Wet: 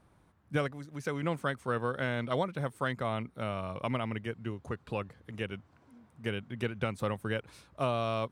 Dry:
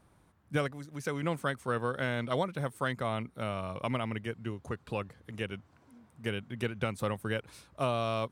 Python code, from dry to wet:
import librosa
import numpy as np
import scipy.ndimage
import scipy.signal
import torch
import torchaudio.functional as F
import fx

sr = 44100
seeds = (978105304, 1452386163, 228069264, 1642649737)

y = fx.high_shelf(x, sr, hz=6200.0, db=-6.5)